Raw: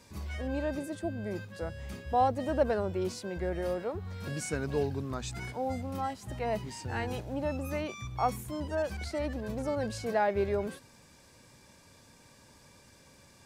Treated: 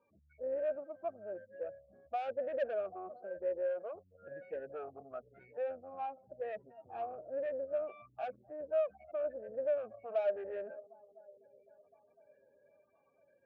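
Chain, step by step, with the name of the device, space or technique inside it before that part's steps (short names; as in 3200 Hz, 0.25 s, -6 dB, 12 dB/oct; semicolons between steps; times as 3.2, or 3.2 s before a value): air absorption 340 m; tape echo 0.252 s, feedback 81%, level -20.5 dB, low-pass 4300 Hz; spectral gate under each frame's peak -15 dB strong; dynamic EQ 600 Hz, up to +6 dB, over -45 dBFS, Q 1.1; talk box (tube stage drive 30 dB, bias 0.45; vowel sweep a-e 1 Hz); gain +4 dB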